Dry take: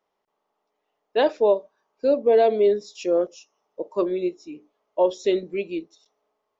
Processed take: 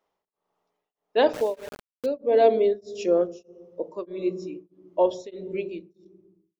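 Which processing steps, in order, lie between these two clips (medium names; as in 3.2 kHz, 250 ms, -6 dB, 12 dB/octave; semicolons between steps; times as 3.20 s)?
fade out at the end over 1.65 s; on a send at -18.5 dB: tilt EQ -4 dB/octave + reverberation RT60 1.2 s, pre-delay 3 ms; 1.33–2.06 s: on the sum: small samples zeroed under -30 dBFS; tremolo of two beating tones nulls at 1.6 Hz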